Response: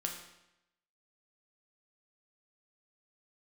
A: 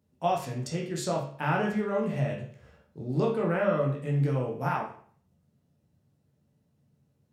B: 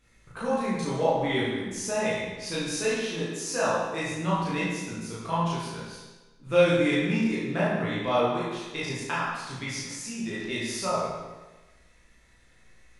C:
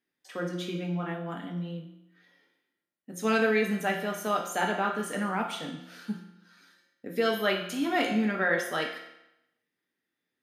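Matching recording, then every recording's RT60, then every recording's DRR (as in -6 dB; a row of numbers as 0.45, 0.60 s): C; 0.50, 1.2, 0.85 s; -2.5, -9.0, 1.0 dB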